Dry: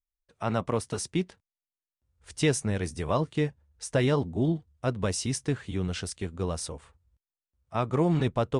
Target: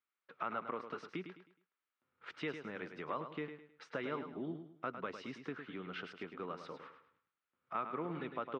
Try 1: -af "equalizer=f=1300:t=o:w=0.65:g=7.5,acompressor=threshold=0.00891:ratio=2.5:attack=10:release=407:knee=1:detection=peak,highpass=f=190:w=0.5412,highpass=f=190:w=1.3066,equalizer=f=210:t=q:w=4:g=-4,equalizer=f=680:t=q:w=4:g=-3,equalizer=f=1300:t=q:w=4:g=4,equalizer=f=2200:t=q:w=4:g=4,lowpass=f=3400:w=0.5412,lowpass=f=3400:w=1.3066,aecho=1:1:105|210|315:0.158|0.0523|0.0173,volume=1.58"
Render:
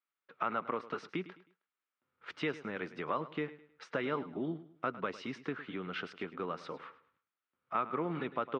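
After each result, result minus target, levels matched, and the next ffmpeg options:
compression: peak gain reduction -5.5 dB; echo-to-direct -7 dB
-af "equalizer=f=1300:t=o:w=0.65:g=7.5,acompressor=threshold=0.00316:ratio=2.5:attack=10:release=407:knee=1:detection=peak,highpass=f=190:w=0.5412,highpass=f=190:w=1.3066,equalizer=f=210:t=q:w=4:g=-4,equalizer=f=680:t=q:w=4:g=-3,equalizer=f=1300:t=q:w=4:g=4,equalizer=f=2200:t=q:w=4:g=4,lowpass=f=3400:w=0.5412,lowpass=f=3400:w=1.3066,aecho=1:1:105|210|315:0.158|0.0523|0.0173,volume=1.58"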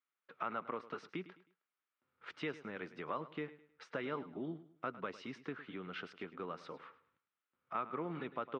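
echo-to-direct -7 dB
-af "equalizer=f=1300:t=o:w=0.65:g=7.5,acompressor=threshold=0.00316:ratio=2.5:attack=10:release=407:knee=1:detection=peak,highpass=f=190:w=0.5412,highpass=f=190:w=1.3066,equalizer=f=210:t=q:w=4:g=-4,equalizer=f=680:t=q:w=4:g=-3,equalizer=f=1300:t=q:w=4:g=4,equalizer=f=2200:t=q:w=4:g=4,lowpass=f=3400:w=0.5412,lowpass=f=3400:w=1.3066,aecho=1:1:105|210|315|420:0.355|0.117|0.0386|0.0128,volume=1.58"

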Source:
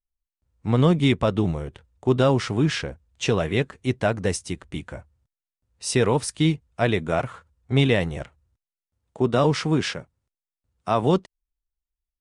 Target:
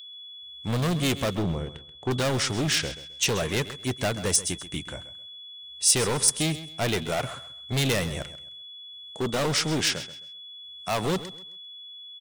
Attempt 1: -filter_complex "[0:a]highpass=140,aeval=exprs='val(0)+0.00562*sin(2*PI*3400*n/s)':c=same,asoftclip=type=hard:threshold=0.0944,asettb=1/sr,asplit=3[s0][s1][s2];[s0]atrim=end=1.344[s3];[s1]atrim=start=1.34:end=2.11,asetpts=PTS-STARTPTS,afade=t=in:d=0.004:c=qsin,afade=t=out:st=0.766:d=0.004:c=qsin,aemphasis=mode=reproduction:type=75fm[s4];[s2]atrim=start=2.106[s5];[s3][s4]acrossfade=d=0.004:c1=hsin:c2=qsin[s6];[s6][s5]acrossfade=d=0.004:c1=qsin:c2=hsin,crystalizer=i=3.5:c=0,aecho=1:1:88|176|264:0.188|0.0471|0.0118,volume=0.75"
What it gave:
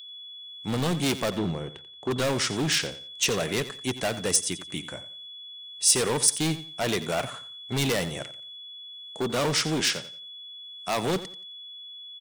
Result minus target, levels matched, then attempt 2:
echo 44 ms early; 125 Hz band -3.0 dB
-filter_complex "[0:a]aeval=exprs='val(0)+0.00562*sin(2*PI*3400*n/s)':c=same,asoftclip=type=hard:threshold=0.0944,asettb=1/sr,asplit=3[s0][s1][s2];[s0]atrim=end=1.344[s3];[s1]atrim=start=1.34:end=2.11,asetpts=PTS-STARTPTS,afade=t=in:d=0.004:c=qsin,afade=t=out:st=0.766:d=0.004:c=qsin,aemphasis=mode=reproduction:type=75fm[s4];[s2]atrim=start=2.106[s5];[s3][s4]acrossfade=d=0.004:c1=hsin:c2=qsin[s6];[s6][s5]acrossfade=d=0.004:c1=qsin:c2=hsin,crystalizer=i=3.5:c=0,aecho=1:1:132|264|396:0.188|0.0471|0.0118,volume=0.75"

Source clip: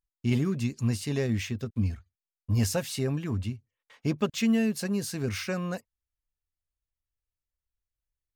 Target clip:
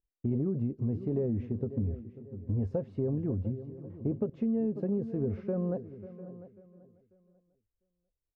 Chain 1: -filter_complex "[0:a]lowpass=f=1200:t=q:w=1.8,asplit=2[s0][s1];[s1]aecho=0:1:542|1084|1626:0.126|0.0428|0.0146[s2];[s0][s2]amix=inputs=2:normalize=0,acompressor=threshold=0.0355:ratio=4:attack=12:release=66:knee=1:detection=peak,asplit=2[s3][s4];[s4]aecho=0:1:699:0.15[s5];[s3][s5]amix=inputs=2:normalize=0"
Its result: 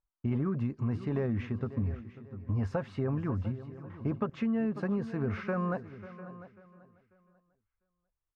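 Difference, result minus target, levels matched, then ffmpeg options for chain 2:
1 kHz band +13.0 dB
-filter_complex "[0:a]lowpass=f=480:t=q:w=1.8,asplit=2[s0][s1];[s1]aecho=0:1:542|1084|1626:0.126|0.0428|0.0146[s2];[s0][s2]amix=inputs=2:normalize=0,acompressor=threshold=0.0355:ratio=4:attack=12:release=66:knee=1:detection=peak,asplit=2[s3][s4];[s4]aecho=0:1:699:0.15[s5];[s3][s5]amix=inputs=2:normalize=0"

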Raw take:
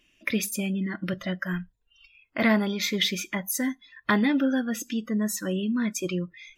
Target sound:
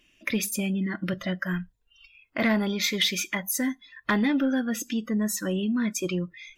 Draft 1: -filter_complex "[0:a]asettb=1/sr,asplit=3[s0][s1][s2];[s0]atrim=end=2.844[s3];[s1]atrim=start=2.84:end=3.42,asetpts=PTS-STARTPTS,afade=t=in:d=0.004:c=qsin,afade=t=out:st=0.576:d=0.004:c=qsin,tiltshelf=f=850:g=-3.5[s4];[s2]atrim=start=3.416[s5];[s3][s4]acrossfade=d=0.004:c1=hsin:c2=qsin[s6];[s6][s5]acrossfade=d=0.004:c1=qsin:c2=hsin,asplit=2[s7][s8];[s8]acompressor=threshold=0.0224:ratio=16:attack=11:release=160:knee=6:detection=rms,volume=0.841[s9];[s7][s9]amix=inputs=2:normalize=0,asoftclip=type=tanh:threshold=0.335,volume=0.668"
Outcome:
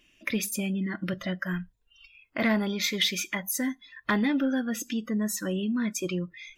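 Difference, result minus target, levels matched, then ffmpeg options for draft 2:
compression: peak gain reduction +9 dB
-filter_complex "[0:a]asettb=1/sr,asplit=3[s0][s1][s2];[s0]atrim=end=2.844[s3];[s1]atrim=start=2.84:end=3.42,asetpts=PTS-STARTPTS,afade=t=in:d=0.004:c=qsin,afade=t=out:st=0.576:d=0.004:c=qsin,tiltshelf=f=850:g=-3.5[s4];[s2]atrim=start=3.416[s5];[s3][s4]acrossfade=d=0.004:c1=hsin:c2=qsin[s6];[s6][s5]acrossfade=d=0.004:c1=qsin:c2=hsin,asplit=2[s7][s8];[s8]acompressor=threshold=0.0668:ratio=16:attack=11:release=160:knee=6:detection=rms,volume=0.841[s9];[s7][s9]amix=inputs=2:normalize=0,asoftclip=type=tanh:threshold=0.335,volume=0.668"

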